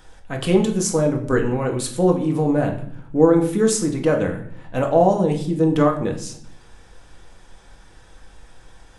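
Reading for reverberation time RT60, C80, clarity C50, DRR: 0.65 s, 13.5 dB, 10.0 dB, 2.0 dB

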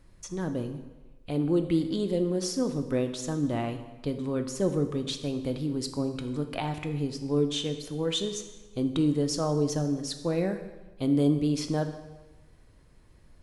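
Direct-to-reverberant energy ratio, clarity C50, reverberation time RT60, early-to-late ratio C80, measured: 6.5 dB, 9.5 dB, 1.2 s, 11.5 dB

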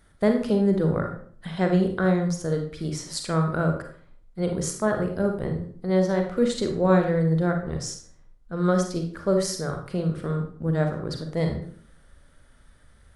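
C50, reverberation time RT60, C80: 6.0 dB, 0.55 s, 11.0 dB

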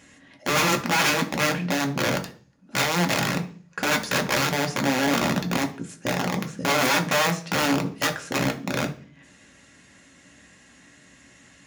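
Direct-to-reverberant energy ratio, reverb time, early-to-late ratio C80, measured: 2.5 dB, 0.45 s, 19.0 dB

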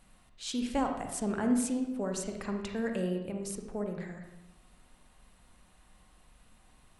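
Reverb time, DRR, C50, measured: 0.90 s, 3.5 dB, 4.5 dB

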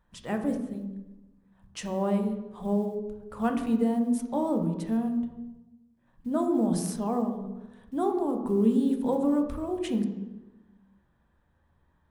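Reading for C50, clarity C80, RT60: 7.5 dB, 9.5 dB, 1.0 s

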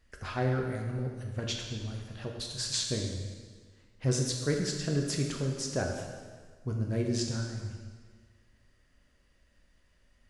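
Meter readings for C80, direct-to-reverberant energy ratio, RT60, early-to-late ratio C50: 4.5 dB, 0.5 dB, 1.6 s, 3.5 dB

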